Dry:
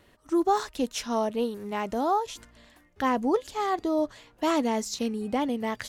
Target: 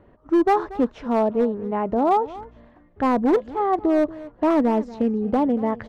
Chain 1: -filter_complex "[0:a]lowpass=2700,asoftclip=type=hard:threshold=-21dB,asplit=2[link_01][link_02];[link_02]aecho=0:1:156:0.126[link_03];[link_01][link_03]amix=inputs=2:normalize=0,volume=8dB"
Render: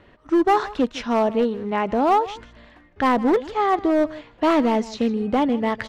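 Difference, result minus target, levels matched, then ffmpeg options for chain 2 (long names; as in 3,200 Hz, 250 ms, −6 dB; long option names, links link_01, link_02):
echo 78 ms early; 2,000 Hz band +5.5 dB
-filter_complex "[0:a]lowpass=970,asoftclip=type=hard:threshold=-21dB,asplit=2[link_01][link_02];[link_02]aecho=0:1:234:0.126[link_03];[link_01][link_03]amix=inputs=2:normalize=0,volume=8dB"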